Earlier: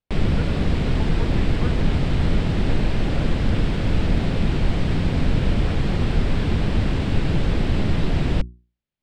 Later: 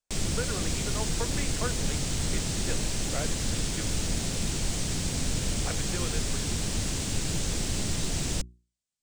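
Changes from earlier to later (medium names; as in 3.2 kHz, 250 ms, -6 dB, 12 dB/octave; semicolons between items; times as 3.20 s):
background -11.0 dB; master: remove distance through air 430 m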